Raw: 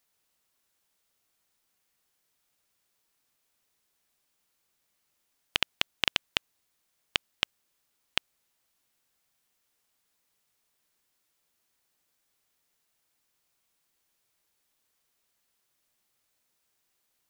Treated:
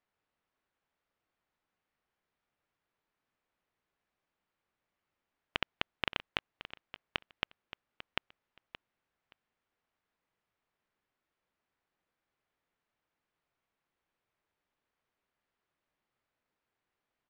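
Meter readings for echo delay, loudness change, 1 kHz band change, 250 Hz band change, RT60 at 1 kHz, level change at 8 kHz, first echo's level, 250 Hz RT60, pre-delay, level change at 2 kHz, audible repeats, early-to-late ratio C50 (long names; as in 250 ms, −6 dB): 573 ms, −8.5 dB, −2.0 dB, −2.0 dB, no reverb audible, below −20 dB, −14.0 dB, no reverb audible, no reverb audible, −5.5 dB, 2, no reverb audible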